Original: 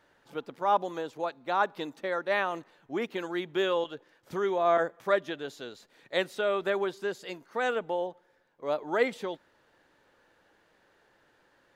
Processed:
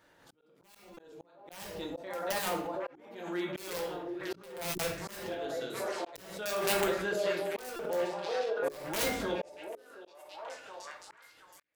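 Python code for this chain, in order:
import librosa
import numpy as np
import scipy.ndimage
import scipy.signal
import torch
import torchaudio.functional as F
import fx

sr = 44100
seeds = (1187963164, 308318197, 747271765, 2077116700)

y = (np.mod(10.0 ** (20.0 / 20.0) * x + 1.0, 2.0) - 1.0) / 10.0 ** (20.0 / 20.0)
y = fx.low_shelf(y, sr, hz=280.0, db=6.0)
y = fx.echo_stepped(y, sr, ms=724, hz=520.0, octaves=0.7, feedback_pct=70, wet_db=-3.0)
y = fx.room_shoebox(y, sr, seeds[0], volume_m3=74.0, walls='mixed', distance_m=0.68)
y = np.clip(y, -10.0 ** (-19.0 / 20.0), 10.0 ** (-19.0 / 20.0))
y = fx.auto_swell(y, sr, attack_ms=585.0)
y = fx.highpass(y, sr, hz=83.0, slope=6)
y = fx.hum_notches(y, sr, base_hz=60, count=7)
y = fx.auto_swell(y, sr, attack_ms=693.0)
y = fx.high_shelf(y, sr, hz=6400.0, db=9.0)
y = fx.buffer_glitch(y, sr, at_s=(0.94, 7.76), block=128, repeats=10)
y = fx.pre_swell(y, sr, db_per_s=66.0)
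y = y * librosa.db_to_amplitude(-3.0)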